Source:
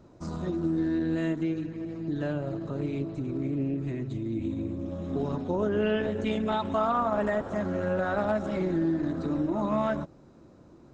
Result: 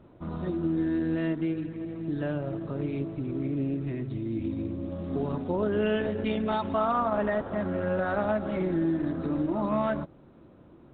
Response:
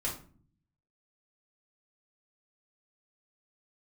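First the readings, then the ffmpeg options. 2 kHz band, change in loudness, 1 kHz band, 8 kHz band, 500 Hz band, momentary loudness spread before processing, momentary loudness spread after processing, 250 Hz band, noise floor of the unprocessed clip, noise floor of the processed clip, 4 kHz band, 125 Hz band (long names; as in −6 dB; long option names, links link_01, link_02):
0.0 dB, 0.0 dB, 0.0 dB, can't be measured, 0.0 dB, 7 LU, 7 LU, 0.0 dB, −54 dBFS, −54 dBFS, −1.0 dB, 0.0 dB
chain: -ar 8000 -c:a pcm_mulaw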